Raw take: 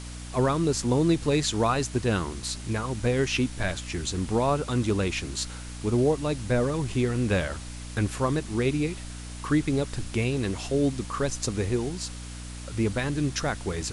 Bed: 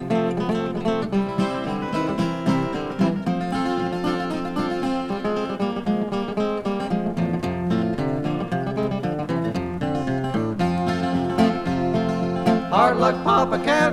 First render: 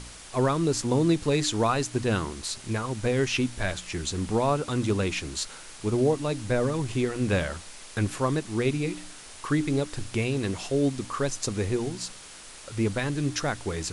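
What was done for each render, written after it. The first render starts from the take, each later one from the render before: de-hum 60 Hz, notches 5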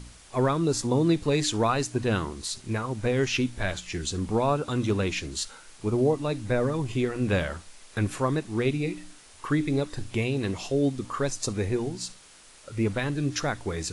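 noise print and reduce 7 dB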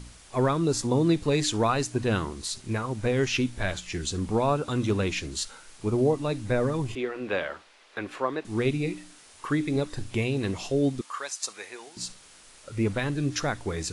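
6.95–8.45 s: three-band isolator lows -21 dB, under 300 Hz, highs -17 dB, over 4.3 kHz; 8.97–9.76 s: bass shelf 92 Hz -9.5 dB; 11.01–11.97 s: high-pass 1 kHz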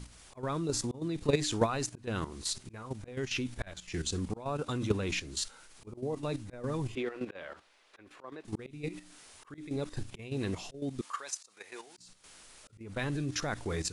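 slow attack 369 ms; level held to a coarse grid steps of 11 dB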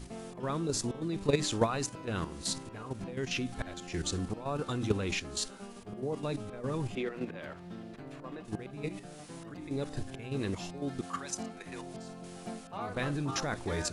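add bed -23 dB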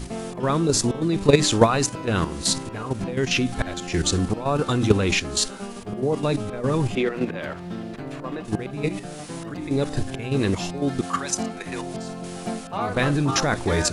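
trim +12 dB

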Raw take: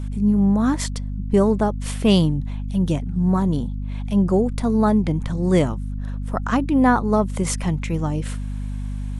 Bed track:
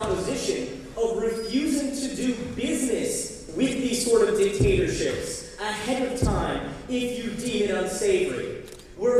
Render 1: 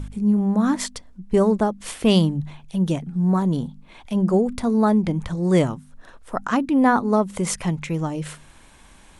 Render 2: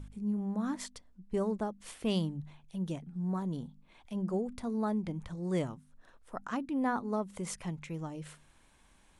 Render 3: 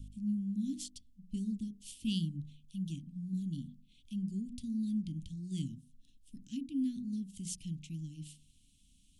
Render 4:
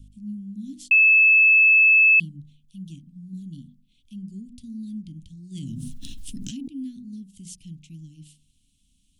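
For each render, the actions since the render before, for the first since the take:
de-hum 50 Hz, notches 5
trim -14.5 dB
Chebyshev band-stop 270–2900 Hz, order 4; hum notches 60/120/180/240/300/360/420 Hz
0.91–2.20 s: bleep 2.61 kHz -11.5 dBFS; 5.55–6.68 s: level flattener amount 100%

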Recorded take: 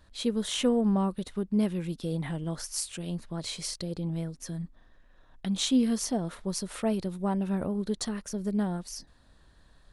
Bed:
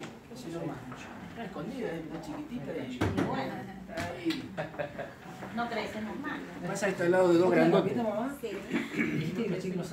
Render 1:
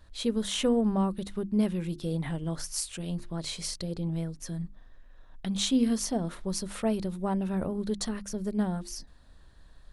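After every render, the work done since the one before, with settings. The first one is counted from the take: bass shelf 63 Hz +8.5 dB; hum notches 50/100/150/200/250/300/350 Hz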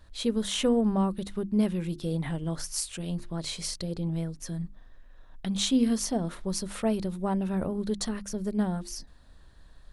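trim +1 dB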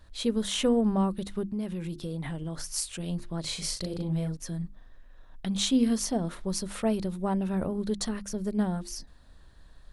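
1.51–2.68 s: compression 3:1, threshold -31 dBFS; 3.41–4.37 s: doubling 38 ms -4 dB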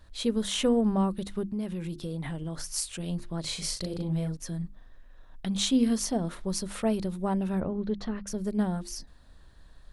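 7.60–8.27 s: distance through air 280 m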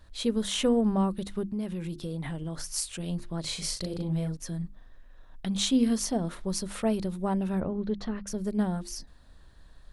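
no audible change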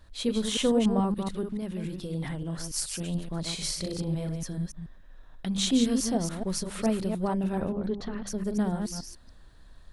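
chunks repeated in reverse 143 ms, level -6 dB

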